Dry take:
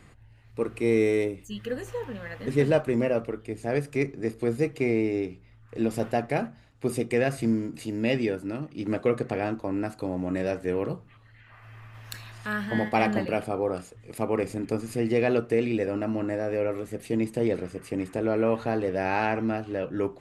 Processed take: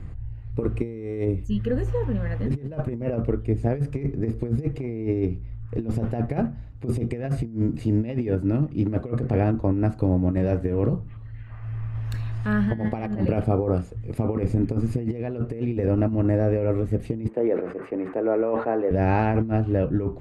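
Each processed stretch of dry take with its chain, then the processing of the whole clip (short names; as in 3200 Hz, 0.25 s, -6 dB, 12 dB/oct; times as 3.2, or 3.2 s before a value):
17.28–18.91 HPF 160 Hz + three-band isolator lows -22 dB, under 330 Hz, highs -23 dB, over 2300 Hz + sustainer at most 86 dB/s
whole clip: tilt -3.5 dB/oct; negative-ratio compressor -23 dBFS, ratio -0.5; bell 63 Hz +7.5 dB 1.8 oct; gain -1 dB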